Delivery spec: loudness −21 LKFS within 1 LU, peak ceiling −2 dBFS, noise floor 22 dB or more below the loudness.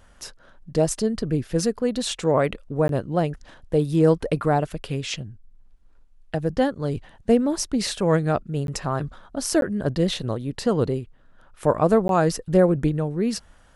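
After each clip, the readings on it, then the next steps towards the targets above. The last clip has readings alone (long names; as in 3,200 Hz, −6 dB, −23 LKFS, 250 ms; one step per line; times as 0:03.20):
number of dropouts 4; longest dropout 12 ms; integrated loudness −23.5 LKFS; sample peak −5.5 dBFS; target loudness −21.0 LKFS
→ repair the gap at 0:02.88/0:08.67/0:09.61/0:12.08, 12 ms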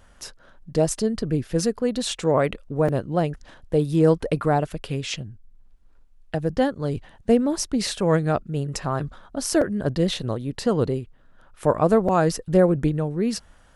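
number of dropouts 0; integrated loudness −23.5 LKFS; sample peak −5.5 dBFS; target loudness −21.0 LKFS
→ level +2.5 dB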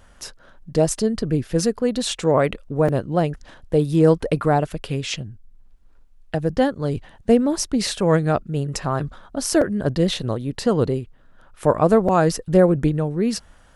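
integrated loudness −21.0 LKFS; sample peak −3.0 dBFS; background noise floor −51 dBFS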